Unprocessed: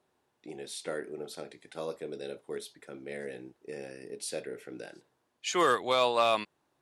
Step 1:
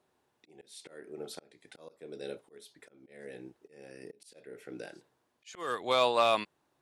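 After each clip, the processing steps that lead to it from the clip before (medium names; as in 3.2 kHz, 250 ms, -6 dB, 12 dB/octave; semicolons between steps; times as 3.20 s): slow attack 403 ms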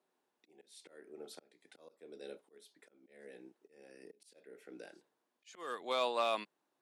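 high-pass 190 Hz 24 dB/octave; trim -7.5 dB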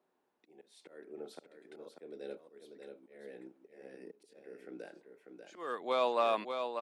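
treble shelf 2.9 kHz -12 dB; on a send: delay 591 ms -6.5 dB; on the sum: trim +4.5 dB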